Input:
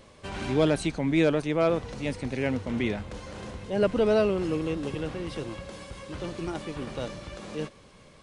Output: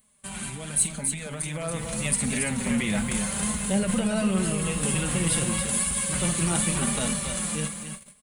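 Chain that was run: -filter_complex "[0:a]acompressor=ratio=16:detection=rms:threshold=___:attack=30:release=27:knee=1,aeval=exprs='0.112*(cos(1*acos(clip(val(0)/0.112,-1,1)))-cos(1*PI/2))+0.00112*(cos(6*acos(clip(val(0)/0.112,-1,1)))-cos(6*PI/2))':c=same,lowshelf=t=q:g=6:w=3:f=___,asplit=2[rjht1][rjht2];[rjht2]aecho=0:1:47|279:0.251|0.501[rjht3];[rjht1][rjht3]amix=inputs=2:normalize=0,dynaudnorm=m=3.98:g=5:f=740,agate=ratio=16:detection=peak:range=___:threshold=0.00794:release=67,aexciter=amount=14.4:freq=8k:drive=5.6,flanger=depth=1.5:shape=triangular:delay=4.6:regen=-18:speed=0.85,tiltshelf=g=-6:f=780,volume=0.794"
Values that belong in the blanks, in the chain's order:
0.0224, 270, 0.2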